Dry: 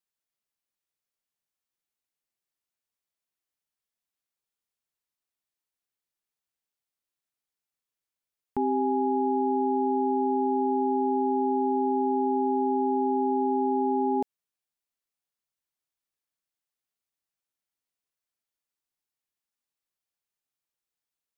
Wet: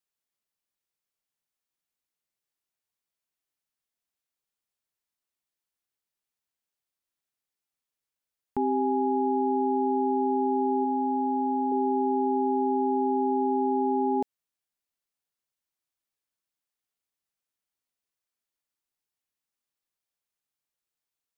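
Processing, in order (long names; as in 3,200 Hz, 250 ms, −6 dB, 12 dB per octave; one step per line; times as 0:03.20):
0:10.84–0:11.72: notch filter 400 Hz, Q 12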